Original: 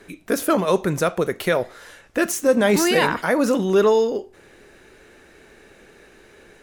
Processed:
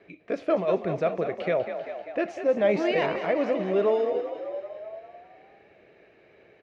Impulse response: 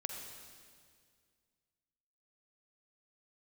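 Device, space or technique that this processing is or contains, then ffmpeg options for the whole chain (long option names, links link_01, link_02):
frequency-shifting delay pedal into a guitar cabinet: -filter_complex "[0:a]equalizer=frequency=4600:width=0.53:gain=-3.5,asplit=9[link_01][link_02][link_03][link_04][link_05][link_06][link_07][link_08][link_09];[link_02]adelay=196,afreqshift=43,volume=-9.5dB[link_10];[link_03]adelay=392,afreqshift=86,volume=-13.5dB[link_11];[link_04]adelay=588,afreqshift=129,volume=-17.5dB[link_12];[link_05]adelay=784,afreqshift=172,volume=-21.5dB[link_13];[link_06]adelay=980,afreqshift=215,volume=-25.6dB[link_14];[link_07]adelay=1176,afreqshift=258,volume=-29.6dB[link_15];[link_08]adelay=1372,afreqshift=301,volume=-33.6dB[link_16];[link_09]adelay=1568,afreqshift=344,volume=-37.6dB[link_17];[link_01][link_10][link_11][link_12][link_13][link_14][link_15][link_16][link_17]amix=inputs=9:normalize=0,highpass=100,equalizer=frequency=240:width_type=q:width=4:gain=-6,equalizer=frequency=640:width_type=q:width=4:gain=8,equalizer=frequency=960:width_type=q:width=4:gain=-5,equalizer=frequency=1500:width_type=q:width=4:gain=-7,equalizer=frequency=2300:width_type=q:width=4:gain=5,equalizer=frequency=3600:width_type=q:width=4:gain=-4,lowpass=frequency=4000:width=0.5412,lowpass=frequency=4000:width=1.3066,volume=-7.5dB"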